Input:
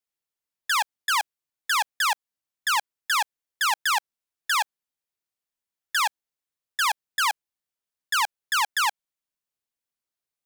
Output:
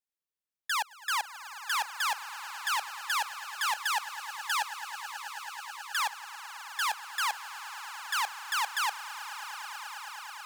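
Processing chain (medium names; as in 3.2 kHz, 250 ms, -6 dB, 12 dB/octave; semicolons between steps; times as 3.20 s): echo with a slow build-up 108 ms, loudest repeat 8, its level -17.5 dB; dynamic bell 480 Hz, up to +4 dB, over -47 dBFS, Q 2.7; trim -7 dB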